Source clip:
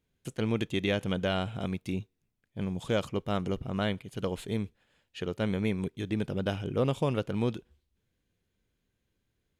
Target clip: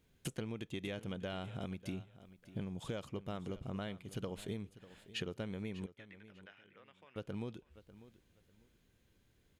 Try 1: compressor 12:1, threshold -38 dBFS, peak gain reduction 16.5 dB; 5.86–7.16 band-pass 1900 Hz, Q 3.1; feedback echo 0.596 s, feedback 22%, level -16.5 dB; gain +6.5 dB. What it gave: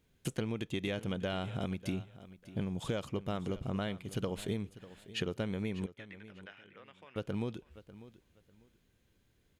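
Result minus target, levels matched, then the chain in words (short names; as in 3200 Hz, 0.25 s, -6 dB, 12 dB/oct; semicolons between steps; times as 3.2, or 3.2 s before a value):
compressor: peak gain reduction -6 dB
compressor 12:1, threshold -44.5 dBFS, peak gain reduction 22.5 dB; 5.86–7.16 band-pass 1900 Hz, Q 3.1; feedback echo 0.596 s, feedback 22%, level -16.5 dB; gain +6.5 dB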